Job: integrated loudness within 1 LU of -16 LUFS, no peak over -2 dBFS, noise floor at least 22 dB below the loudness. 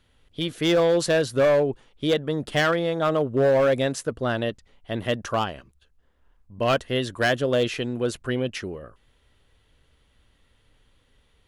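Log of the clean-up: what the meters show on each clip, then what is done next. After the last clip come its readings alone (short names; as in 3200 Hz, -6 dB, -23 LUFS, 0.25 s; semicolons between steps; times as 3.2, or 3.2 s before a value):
clipped 1.7%; flat tops at -15.0 dBFS; loudness -24.0 LUFS; peak -15.0 dBFS; loudness target -16.0 LUFS
-> clip repair -15 dBFS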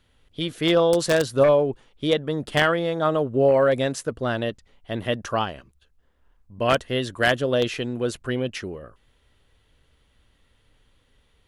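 clipped 0.0%; loudness -23.0 LUFS; peak -6.0 dBFS; loudness target -16.0 LUFS
-> gain +7 dB; limiter -2 dBFS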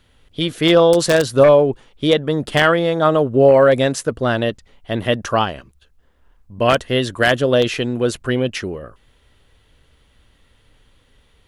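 loudness -16.5 LUFS; peak -2.0 dBFS; noise floor -57 dBFS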